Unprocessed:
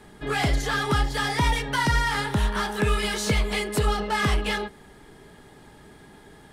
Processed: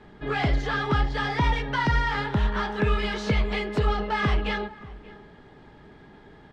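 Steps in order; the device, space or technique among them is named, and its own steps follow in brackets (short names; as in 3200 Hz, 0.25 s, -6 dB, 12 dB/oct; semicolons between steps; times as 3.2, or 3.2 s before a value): shout across a valley (air absorption 200 m; outdoor echo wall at 100 m, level -19 dB)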